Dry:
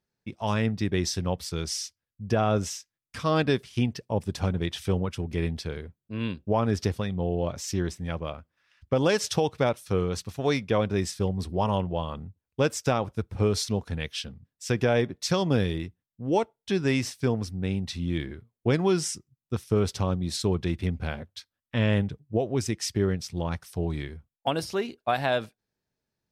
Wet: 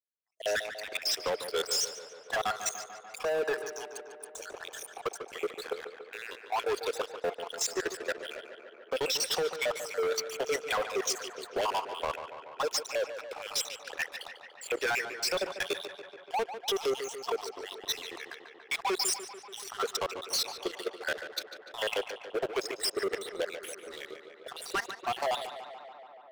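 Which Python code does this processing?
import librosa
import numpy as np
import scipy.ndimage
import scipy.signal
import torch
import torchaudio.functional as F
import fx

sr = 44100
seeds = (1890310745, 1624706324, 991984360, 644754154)

p1 = fx.spec_dropout(x, sr, seeds[0], share_pct=63)
p2 = scipy.signal.sosfilt(scipy.signal.butter(4, 11000.0, 'lowpass', fs=sr, output='sos'), p1)
p3 = fx.spec_box(p2, sr, start_s=3.23, length_s=2.09, low_hz=1800.0, high_hz=5500.0, gain_db=-17)
p4 = scipy.signal.sosfilt(scipy.signal.butter(8, 420.0, 'highpass', fs=sr, output='sos'), p3)
p5 = fx.dynamic_eq(p4, sr, hz=770.0, q=1.1, threshold_db=-43.0, ratio=4.0, max_db=-4)
p6 = fx.level_steps(p5, sr, step_db=20)
p7 = fx.leveller(p6, sr, passes=5)
y = p7 + fx.echo_tape(p7, sr, ms=145, feedback_pct=86, wet_db=-7.0, lp_hz=3500.0, drive_db=29.0, wow_cents=25, dry=0)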